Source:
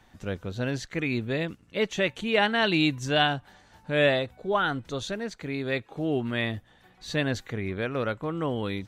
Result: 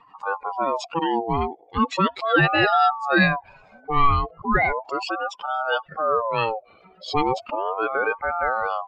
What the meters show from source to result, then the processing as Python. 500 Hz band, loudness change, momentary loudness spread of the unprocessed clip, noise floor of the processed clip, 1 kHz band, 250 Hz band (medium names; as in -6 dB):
+2.5 dB, +5.0 dB, 11 LU, -55 dBFS, +11.5 dB, +1.0 dB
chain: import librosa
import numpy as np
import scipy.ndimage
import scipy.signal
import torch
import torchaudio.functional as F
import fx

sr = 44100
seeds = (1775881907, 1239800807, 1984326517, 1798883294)

y = fx.spec_expand(x, sr, power=2.1)
y = fx.ring_lfo(y, sr, carrier_hz=800.0, swing_pct=30, hz=0.36)
y = y * librosa.db_to_amplitude(8.5)